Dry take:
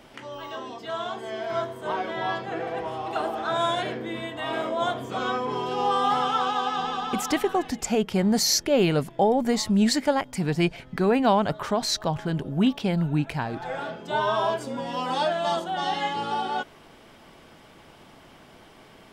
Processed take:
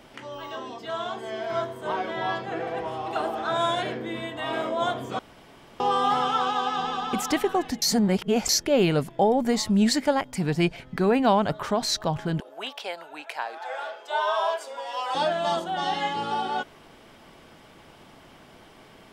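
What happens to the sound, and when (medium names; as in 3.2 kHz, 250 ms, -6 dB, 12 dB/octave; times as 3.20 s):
5.19–5.80 s: room tone
7.82–8.49 s: reverse
12.40–15.15 s: high-pass 540 Hz 24 dB/octave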